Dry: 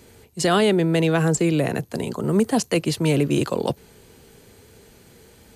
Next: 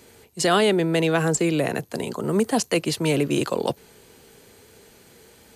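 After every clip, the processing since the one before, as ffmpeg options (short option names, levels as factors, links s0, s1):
-af "lowshelf=f=200:g=-9,volume=1.12"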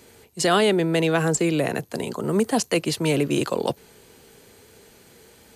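-af anull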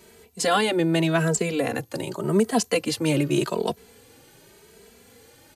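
-filter_complex "[0:a]asplit=2[s0][s1];[s1]adelay=2.7,afreqshift=0.86[s2];[s0][s2]amix=inputs=2:normalize=1,volume=1.26"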